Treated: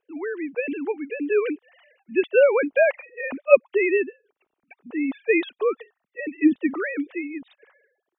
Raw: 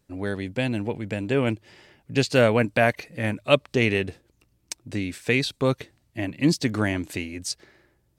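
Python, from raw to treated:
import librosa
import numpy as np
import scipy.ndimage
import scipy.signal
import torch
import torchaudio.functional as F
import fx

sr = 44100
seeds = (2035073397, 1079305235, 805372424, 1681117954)

y = fx.sine_speech(x, sr)
y = y * 10.0 ** (1.5 / 20.0)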